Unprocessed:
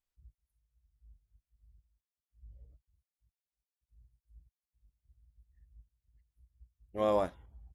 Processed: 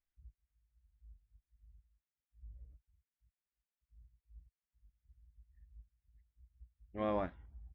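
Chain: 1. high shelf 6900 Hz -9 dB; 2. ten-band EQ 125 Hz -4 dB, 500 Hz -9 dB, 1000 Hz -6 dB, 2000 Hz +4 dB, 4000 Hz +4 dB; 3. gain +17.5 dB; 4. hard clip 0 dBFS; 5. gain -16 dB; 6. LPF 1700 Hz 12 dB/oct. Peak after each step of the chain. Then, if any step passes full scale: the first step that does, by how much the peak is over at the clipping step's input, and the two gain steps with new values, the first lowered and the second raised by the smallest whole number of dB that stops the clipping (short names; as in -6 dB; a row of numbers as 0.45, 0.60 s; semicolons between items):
-18.0, -23.5, -6.0, -6.0, -22.0, -24.0 dBFS; no overload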